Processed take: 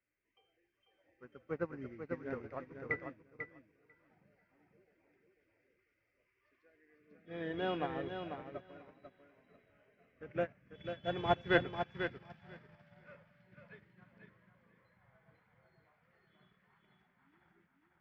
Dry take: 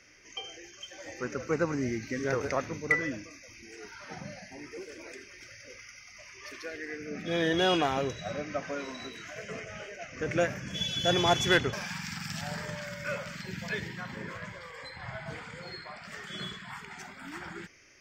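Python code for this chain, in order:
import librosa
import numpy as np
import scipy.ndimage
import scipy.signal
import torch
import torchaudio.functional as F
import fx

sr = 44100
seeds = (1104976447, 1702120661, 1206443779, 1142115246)

p1 = fx.air_absorb(x, sr, metres=450.0)
p2 = p1 + fx.echo_feedback(p1, sr, ms=494, feedback_pct=35, wet_db=-3, dry=0)
p3 = fx.upward_expand(p2, sr, threshold_db=-39.0, expansion=2.5)
y = p3 * 10.0 ** (-1.5 / 20.0)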